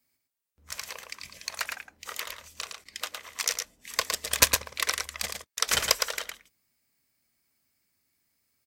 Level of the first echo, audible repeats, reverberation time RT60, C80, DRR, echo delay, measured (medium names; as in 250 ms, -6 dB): -5.5 dB, 1, no reverb, no reverb, no reverb, 111 ms